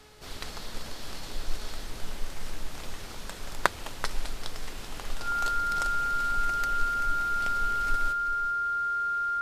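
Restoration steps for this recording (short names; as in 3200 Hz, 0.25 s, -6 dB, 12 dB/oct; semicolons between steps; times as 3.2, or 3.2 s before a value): de-hum 425 Hz, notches 21; notch 1400 Hz, Q 30; inverse comb 0.385 s -11.5 dB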